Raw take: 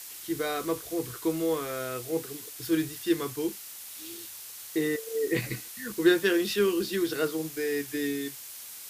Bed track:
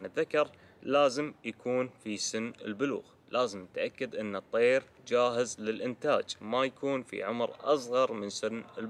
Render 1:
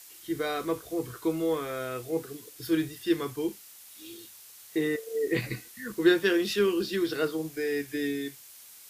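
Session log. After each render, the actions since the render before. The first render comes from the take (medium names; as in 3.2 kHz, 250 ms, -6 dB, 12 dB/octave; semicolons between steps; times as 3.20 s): noise print and reduce 7 dB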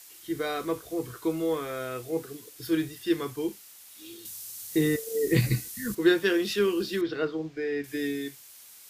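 4.25–5.95 s: tone controls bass +13 dB, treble +10 dB; 7.01–7.84 s: distance through air 180 m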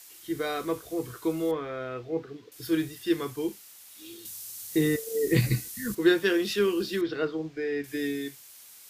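1.51–2.52 s: distance through air 220 m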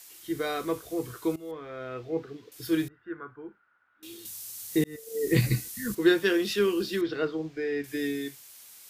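1.36–2.05 s: fade in, from -18.5 dB; 2.88–4.03 s: four-pole ladder low-pass 1.5 kHz, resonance 85%; 4.84–5.34 s: fade in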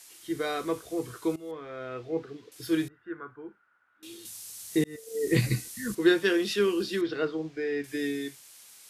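low-pass 12 kHz 24 dB/octave; bass shelf 84 Hz -6 dB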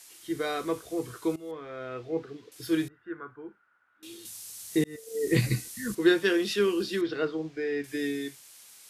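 no audible change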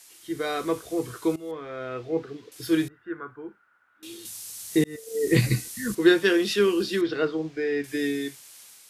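level rider gain up to 4 dB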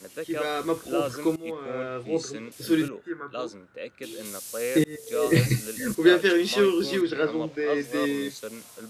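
add bed track -4.5 dB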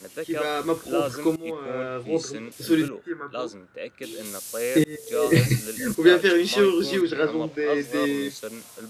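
trim +2 dB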